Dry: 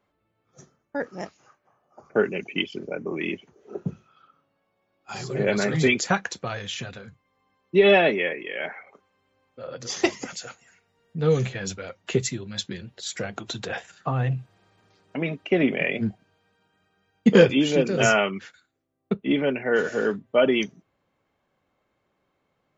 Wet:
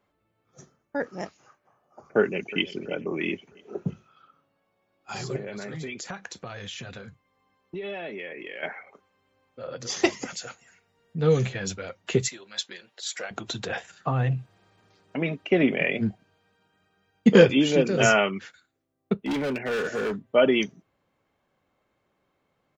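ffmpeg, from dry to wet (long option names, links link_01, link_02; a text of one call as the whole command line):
ffmpeg -i in.wav -filter_complex "[0:a]asplit=2[link_01][link_02];[link_02]afade=type=in:start_time=2.19:duration=0.01,afade=type=out:start_time=2.67:duration=0.01,aecho=0:1:330|660|990|1320:0.149624|0.0673306|0.0302988|0.0136344[link_03];[link_01][link_03]amix=inputs=2:normalize=0,asettb=1/sr,asplit=3[link_04][link_05][link_06];[link_04]atrim=end=5.364[link_07];[link_05]atrim=start=5.36:end=8.63,asetpts=PTS-STARTPTS,afade=type=in:duration=0.004:curve=qsin,afade=type=out:start_time=3.266:duration=0.004:curve=qsin,acompressor=threshold=-34dB:ratio=5:attack=3.2:release=140:knee=1:detection=peak[link_08];[link_06]atrim=start=8.626[link_09];[link_07][link_08]acrossfade=duration=0.004:curve1=hsin:curve2=qsin[link_10];[link_10][link_09]acrossfade=duration=0.004:curve1=qsin:curve2=hsin,asettb=1/sr,asplit=3[link_11][link_12][link_13];[link_11]atrim=end=12.284[link_14];[link_12]atrim=start=12.28:end=13.31,asetpts=PTS-STARTPTS,afade=type=in:duration=0.004:curve=qsin,afade=type=out:start_time=1.026:duration=0.004:curve=qsin,highpass=620[link_15];[link_13]atrim=start=13.306[link_16];[link_14][link_15]acrossfade=duration=0.004:curve1=hsin:curve2=qsin[link_17];[link_17][link_16]acrossfade=duration=0.004:curve1=qsin:curve2=hsin,asettb=1/sr,asplit=3[link_18][link_19][link_20];[link_18]atrim=end=19.214[link_21];[link_19]atrim=start=19.21:end=20.23,asetpts=PTS-STARTPTS,afade=type=in:duration=0.004:curve=qsin,afade=type=out:start_time=1.016:duration=0.004:curve=qsin,asoftclip=type=hard:threshold=-24.5dB[link_22];[link_20]atrim=start=20.226[link_23];[link_21][link_22]acrossfade=duration=0.004:curve1=hsin:curve2=qsin[link_24];[link_24][link_23]acrossfade=duration=0.004:curve1=qsin:curve2=hsin" out.wav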